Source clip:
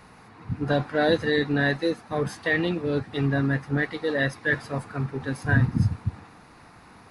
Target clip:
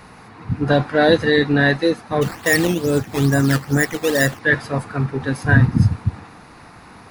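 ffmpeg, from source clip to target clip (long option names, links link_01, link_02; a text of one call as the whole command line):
ffmpeg -i in.wav -filter_complex "[0:a]asplit=3[link_01][link_02][link_03];[link_01]afade=type=out:start_time=2.21:duration=0.02[link_04];[link_02]acrusher=samples=10:mix=1:aa=0.000001:lfo=1:lforange=10:lforate=2.3,afade=type=in:start_time=2.21:duration=0.02,afade=type=out:start_time=4.38:duration=0.02[link_05];[link_03]afade=type=in:start_time=4.38:duration=0.02[link_06];[link_04][link_05][link_06]amix=inputs=3:normalize=0,volume=7.5dB" out.wav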